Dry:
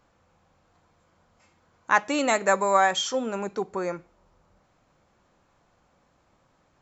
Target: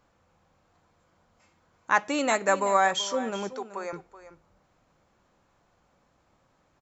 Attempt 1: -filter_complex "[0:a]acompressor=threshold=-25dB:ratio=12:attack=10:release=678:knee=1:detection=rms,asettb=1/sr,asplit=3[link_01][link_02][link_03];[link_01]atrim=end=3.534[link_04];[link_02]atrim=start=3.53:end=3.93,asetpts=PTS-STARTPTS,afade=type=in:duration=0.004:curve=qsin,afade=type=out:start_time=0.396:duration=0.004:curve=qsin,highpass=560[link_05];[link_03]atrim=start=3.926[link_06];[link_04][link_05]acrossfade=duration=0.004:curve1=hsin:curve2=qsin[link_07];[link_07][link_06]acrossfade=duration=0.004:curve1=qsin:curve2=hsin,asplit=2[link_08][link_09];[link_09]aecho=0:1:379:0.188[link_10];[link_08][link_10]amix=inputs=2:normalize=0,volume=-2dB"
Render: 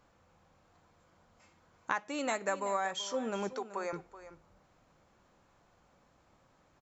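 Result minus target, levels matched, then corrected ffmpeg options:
downward compressor: peak gain reduction +13.5 dB
-filter_complex "[0:a]asettb=1/sr,asplit=3[link_01][link_02][link_03];[link_01]atrim=end=3.534[link_04];[link_02]atrim=start=3.53:end=3.93,asetpts=PTS-STARTPTS,afade=type=in:duration=0.004:curve=qsin,afade=type=out:start_time=0.396:duration=0.004:curve=qsin,highpass=560[link_05];[link_03]atrim=start=3.926[link_06];[link_04][link_05]acrossfade=duration=0.004:curve1=hsin:curve2=qsin[link_07];[link_07][link_06]acrossfade=duration=0.004:curve1=qsin:curve2=hsin,asplit=2[link_08][link_09];[link_09]aecho=0:1:379:0.188[link_10];[link_08][link_10]amix=inputs=2:normalize=0,volume=-2dB"

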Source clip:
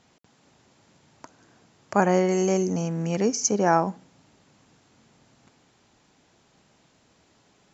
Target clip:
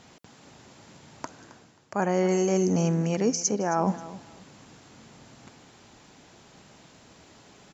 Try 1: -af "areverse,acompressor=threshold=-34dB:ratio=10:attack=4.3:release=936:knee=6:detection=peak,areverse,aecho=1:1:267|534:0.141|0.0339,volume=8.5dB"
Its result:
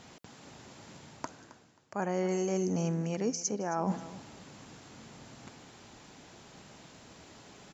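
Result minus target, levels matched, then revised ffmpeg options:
downward compressor: peak gain reduction +7 dB
-af "areverse,acompressor=threshold=-26dB:ratio=10:attack=4.3:release=936:knee=6:detection=peak,areverse,aecho=1:1:267|534:0.141|0.0339,volume=8.5dB"

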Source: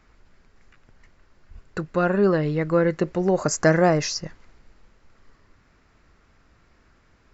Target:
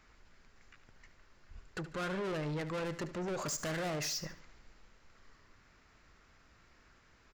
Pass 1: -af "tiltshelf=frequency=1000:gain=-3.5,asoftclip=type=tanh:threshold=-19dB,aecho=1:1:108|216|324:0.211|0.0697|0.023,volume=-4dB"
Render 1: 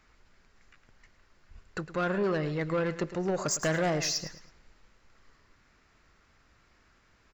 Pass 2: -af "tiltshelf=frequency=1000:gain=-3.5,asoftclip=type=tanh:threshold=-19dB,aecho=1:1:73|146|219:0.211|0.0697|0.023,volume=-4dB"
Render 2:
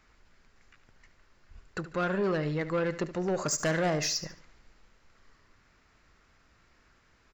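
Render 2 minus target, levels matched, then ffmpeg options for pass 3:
soft clipping: distortion −7 dB
-af "tiltshelf=frequency=1000:gain=-3.5,asoftclip=type=tanh:threshold=-31dB,aecho=1:1:73|146|219:0.211|0.0697|0.023,volume=-4dB"

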